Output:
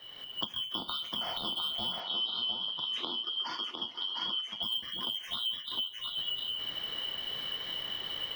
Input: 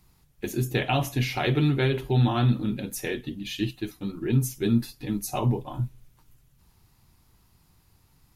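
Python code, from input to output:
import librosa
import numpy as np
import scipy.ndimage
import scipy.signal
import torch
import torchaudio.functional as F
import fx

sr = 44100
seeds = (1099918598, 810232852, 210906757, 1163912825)

y = fx.band_shuffle(x, sr, order='2413')
y = fx.recorder_agc(y, sr, target_db=-16.0, rise_db_per_s=57.0, max_gain_db=30)
y = fx.air_absorb(y, sr, metres=280.0)
y = fx.notch(y, sr, hz=2500.0, q=23.0)
y = fx.echo_multitap(y, sr, ms=(489, 705), db=(-18.5, -5.5))
y = np.repeat(y[::2], 2)[:len(y)]
y = fx.bandpass_edges(y, sr, low_hz=210.0, high_hz=7900.0, at=(2.0, 4.63))
y = fx.band_squash(y, sr, depth_pct=70)
y = y * 10.0 ** (-7.0 / 20.0)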